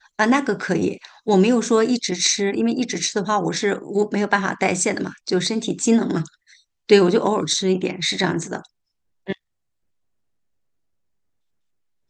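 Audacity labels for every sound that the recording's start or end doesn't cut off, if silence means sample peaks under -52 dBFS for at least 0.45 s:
9.270000	9.370000	sound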